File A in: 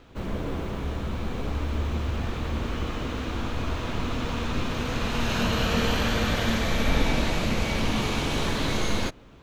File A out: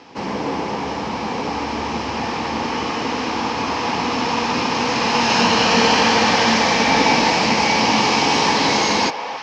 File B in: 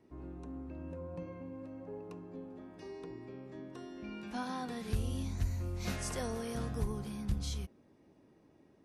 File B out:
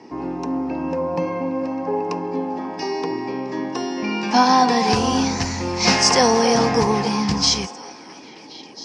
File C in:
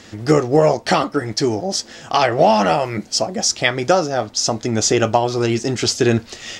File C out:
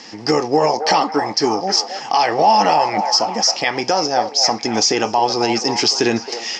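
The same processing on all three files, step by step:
cabinet simulation 280–6200 Hz, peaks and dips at 370 Hz -5 dB, 610 Hz -8 dB, 860 Hz +8 dB, 1.4 kHz -8 dB, 3.6 kHz -7 dB, 5.2 kHz +10 dB; peak limiter -10.5 dBFS; repeats whose band climbs or falls 269 ms, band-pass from 660 Hz, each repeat 0.7 oct, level -6 dB; peak normalisation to -3 dBFS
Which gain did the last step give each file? +13.0 dB, +25.5 dB, +5.0 dB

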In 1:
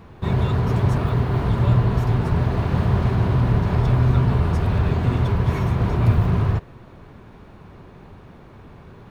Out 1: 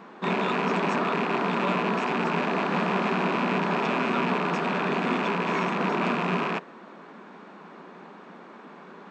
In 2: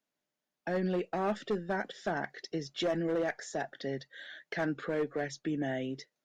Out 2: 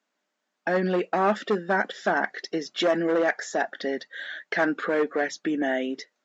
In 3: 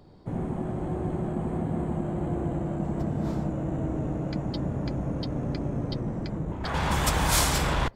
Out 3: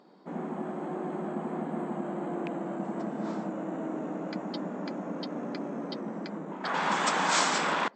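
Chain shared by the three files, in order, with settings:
rattle on loud lows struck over -20 dBFS, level -23 dBFS; brick-wall FIR band-pass 170–8300 Hz; peaking EQ 1.3 kHz +6 dB 1.7 oct; peak normalisation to -12 dBFS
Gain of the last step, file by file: -0.5 dB, +7.0 dB, -3.0 dB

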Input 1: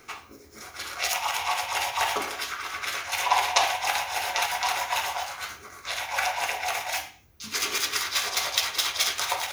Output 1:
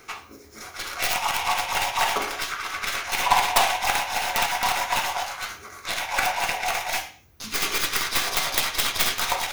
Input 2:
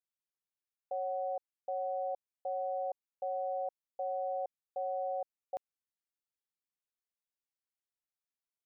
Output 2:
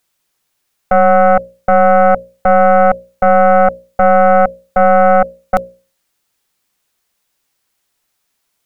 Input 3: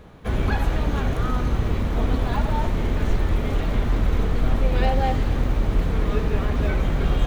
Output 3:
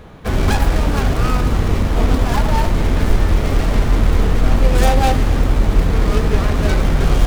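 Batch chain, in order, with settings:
tracing distortion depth 0.41 ms; hum notches 60/120/180/240/300/360/420/480/540/600 Hz; peak normalisation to -1.5 dBFS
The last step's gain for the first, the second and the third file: +3.0 dB, +26.5 dB, +7.5 dB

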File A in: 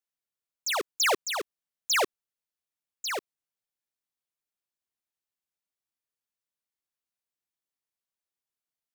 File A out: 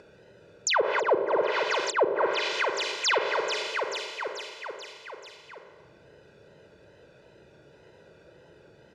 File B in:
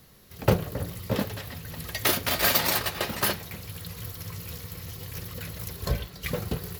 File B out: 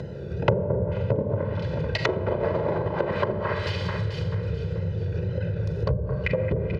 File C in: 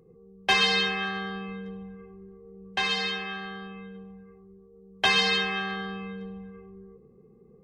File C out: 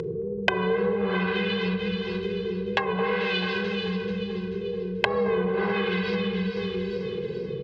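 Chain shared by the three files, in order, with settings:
local Wiener filter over 41 samples; wow and flutter 93 cents; on a send: echo whose repeats swap between lows and highs 218 ms, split 2.2 kHz, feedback 57%, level -8 dB; on the sum: Schroeder reverb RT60 0.92 s, combs from 29 ms, DRR 4.5 dB; in parallel at 0 dB: upward compressor, threshold -32 dBFS; on the sum: low-pass that closes with the level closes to 530 Hz, closed at -18 dBFS; band-pass 110–4700 Hz; comb 2 ms, depth 68%; dynamic bell 280 Hz, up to -3 dB, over -40 dBFS, Q 1; compression 2.5:1, threshold -35 dBFS; normalise loudness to -27 LUFS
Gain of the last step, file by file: +10.0 dB, +10.0 dB, +10.5 dB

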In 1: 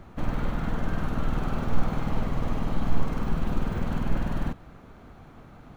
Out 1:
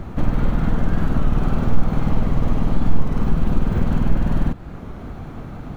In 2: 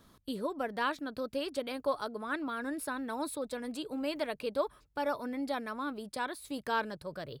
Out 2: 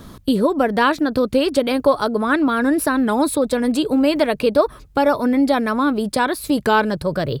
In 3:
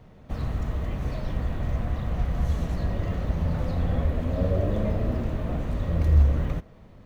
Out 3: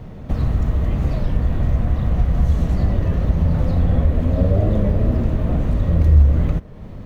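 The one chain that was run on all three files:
bass shelf 450 Hz +7 dB; compression 1.5:1, threshold -35 dBFS; warped record 33 1/3 rpm, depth 100 cents; peak normalisation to -3 dBFS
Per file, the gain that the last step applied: +10.0 dB, +17.5 dB, +9.5 dB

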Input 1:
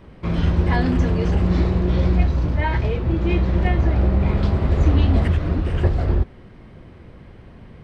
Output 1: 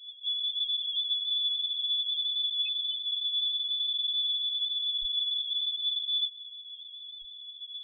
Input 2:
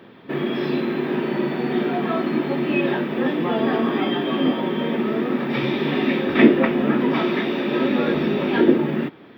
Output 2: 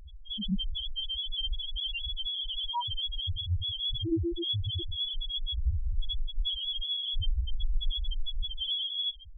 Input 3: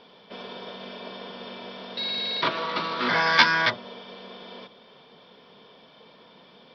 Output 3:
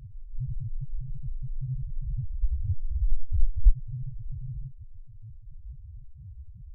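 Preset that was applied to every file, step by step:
octave divider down 1 oct, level +2 dB; reverse; compression, threshold -23 dBFS; reverse; frequency inversion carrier 3.5 kHz; in parallel at -3 dB: peak limiter -23.5 dBFS; on the sum: tilt EQ -4.5 dB/octave; loudest bins only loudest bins 1; trim +8 dB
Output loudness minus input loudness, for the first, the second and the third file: -7.5 LU, -11.0 LU, -10.5 LU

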